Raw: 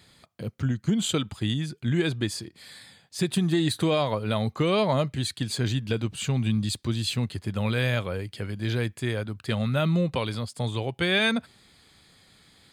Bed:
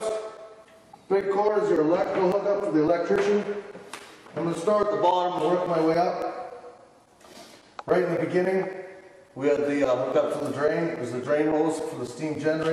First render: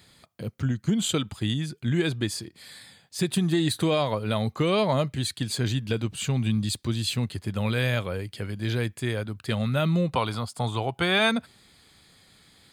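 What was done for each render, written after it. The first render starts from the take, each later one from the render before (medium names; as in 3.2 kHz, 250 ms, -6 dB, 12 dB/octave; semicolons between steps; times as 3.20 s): treble shelf 11 kHz +5.5 dB; 10.14–11.30 s: time-frequency box 640–1500 Hz +7 dB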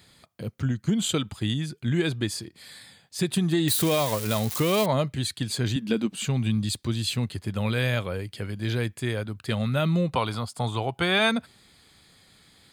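3.68–4.86 s: zero-crossing glitches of -20 dBFS; 5.76–6.27 s: resonant low shelf 150 Hz -12 dB, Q 3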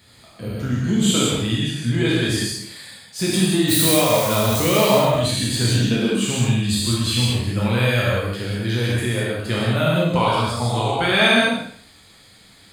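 spectral sustain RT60 0.57 s; gated-style reverb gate 220 ms flat, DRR -5 dB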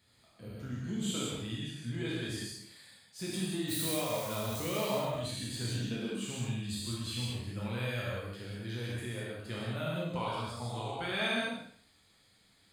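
trim -17 dB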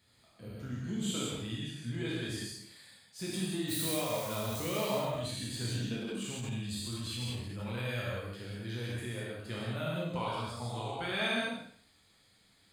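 5.98–7.90 s: transient shaper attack -9 dB, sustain +1 dB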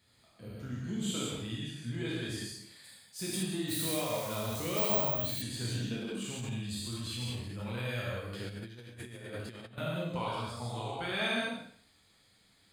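2.84–3.43 s: treble shelf 7.2 kHz +10 dB; 4.77–5.42 s: careless resampling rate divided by 2×, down none, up zero stuff; 8.33–9.78 s: compressor with a negative ratio -43 dBFS, ratio -0.5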